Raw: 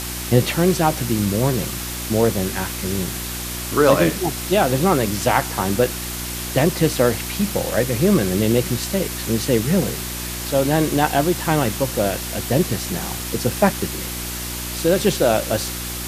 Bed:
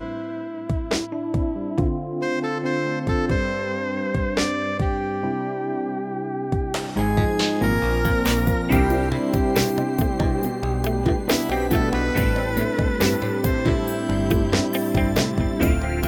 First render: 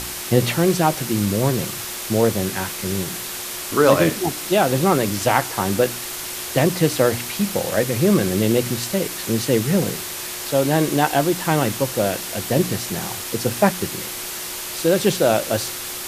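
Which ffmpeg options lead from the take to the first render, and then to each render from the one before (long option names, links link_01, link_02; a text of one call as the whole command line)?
ffmpeg -i in.wav -af "bandreject=frequency=60:width_type=h:width=4,bandreject=frequency=120:width_type=h:width=4,bandreject=frequency=180:width_type=h:width=4,bandreject=frequency=240:width_type=h:width=4,bandreject=frequency=300:width_type=h:width=4" out.wav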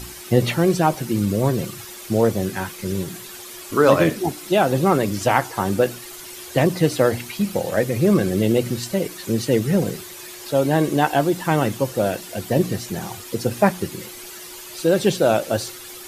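ffmpeg -i in.wav -af "afftdn=noise_reduction=11:noise_floor=-30" out.wav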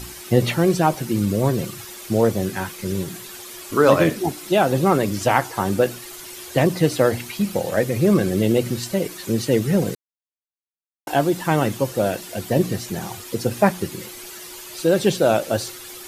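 ffmpeg -i in.wav -filter_complex "[0:a]asplit=3[link_01][link_02][link_03];[link_01]atrim=end=9.95,asetpts=PTS-STARTPTS,afade=type=out:start_time=9.946:duration=0.004:curve=hsin[link_04];[link_02]atrim=start=9.95:end=11.07,asetpts=PTS-STARTPTS,volume=0[link_05];[link_03]atrim=start=11.07,asetpts=PTS-STARTPTS,afade=type=in:duration=0.004:curve=hsin[link_06];[link_04][link_05][link_06]concat=n=3:v=0:a=1" out.wav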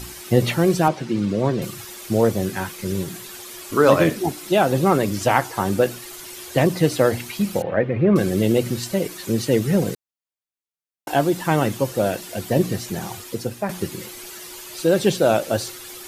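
ffmpeg -i in.wav -filter_complex "[0:a]asettb=1/sr,asplit=3[link_01][link_02][link_03];[link_01]atrim=end=0.884[link_04];[link_02]atrim=start=0.88:end=1.62,asetpts=PTS-STARTPTS,afade=type=in:duration=0.004:curve=qsin,afade=type=out:start_time=0.736:duration=0.004:curve=qsin,highpass=130,lowpass=4600[link_05];[link_03]atrim=start=1.616[link_06];[link_04][link_05]acrossfade=duration=0.004:curve1=hsin:curve2=qsin[link_07];[link_07][link_06]acrossfade=duration=0.004:curve1=qsin:curve2=hsin,asettb=1/sr,asplit=3[link_08][link_09][link_10];[link_08]atrim=end=7.624[link_11];[link_09]atrim=start=7.62:end=8.16,asetpts=PTS-STARTPTS,afade=type=in:duration=0.004:curve=qsin,afade=type=out:start_time=0.536:duration=0.004:curve=qsin,lowpass=frequency=2500:width=0.5412,lowpass=frequency=2500:width=1.3066[link_12];[link_10]atrim=start=8.156[link_13];[link_11][link_12]acrossfade=duration=0.004:curve1=hsin:curve2=qsin[link_14];[link_14][link_13]acrossfade=duration=0.004:curve1=qsin:curve2=hsin,asplit=2[link_15][link_16];[link_15]atrim=end=13.69,asetpts=PTS-STARTPTS,afade=type=out:start_time=13.18:duration=0.51:silence=0.266073[link_17];[link_16]atrim=start=13.69,asetpts=PTS-STARTPTS,afade=type=in:duration=0.004:curve=hsin:silence=0.266073[link_18];[link_17][link_18]concat=n=2:v=0:a=1" out.wav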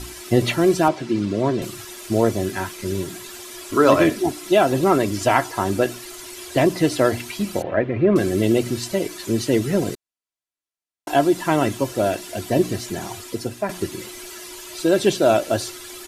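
ffmpeg -i in.wav -af "lowpass=12000,aecho=1:1:3:0.47" out.wav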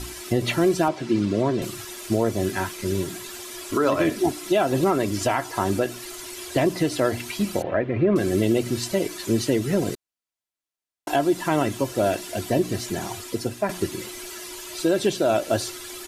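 ffmpeg -i in.wav -af "alimiter=limit=-11dB:level=0:latency=1:release=207" out.wav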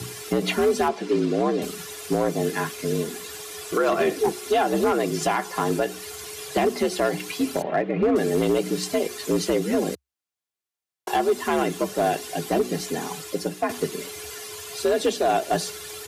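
ffmpeg -i in.wav -af "afreqshift=64,volume=14.5dB,asoftclip=hard,volume=-14.5dB" out.wav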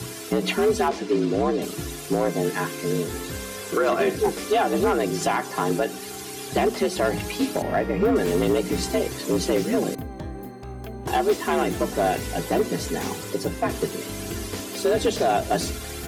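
ffmpeg -i in.wav -i bed.wav -filter_complex "[1:a]volume=-13dB[link_01];[0:a][link_01]amix=inputs=2:normalize=0" out.wav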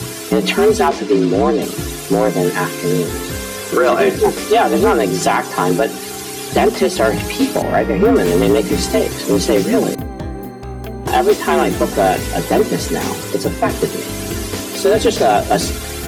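ffmpeg -i in.wav -af "volume=8.5dB" out.wav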